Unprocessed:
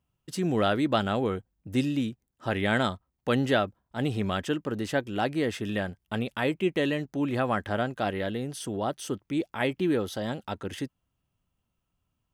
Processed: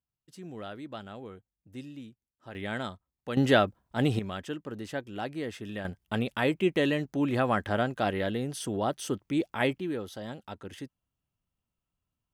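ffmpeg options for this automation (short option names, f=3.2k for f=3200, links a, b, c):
-af "asetnsamples=n=441:p=0,asendcmd='2.55 volume volume -9dB;3.37 volume volume 2.5dB;4.19 volume volume -7.5dB;5.85 volume volume 0.5dB;9.78 volume volume -7.5dB',volume=-16dB"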